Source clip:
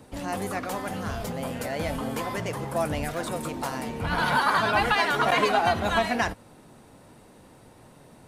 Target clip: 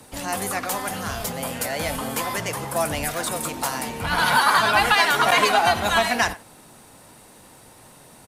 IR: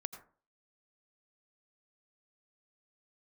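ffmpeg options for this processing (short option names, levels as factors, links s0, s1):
-filter_complex "[0:a]equalizer=f=810:w=1.5:g=2.5,acrossover=split=280|1000[s0][s1][s2];[s2]acontrast=29[s3];[s0][s1][s3]amix=inputs=3:normalize=0,aemphasis=mode=production:type=cd,asplit=2[s4][s5];[s5]adelay=90,highpass=300,lowpass=3400,asoftclip=type=hard:threshold=0.224,volume=0.158[s6];[s4][s6]amix=inputs=2:normalize=0"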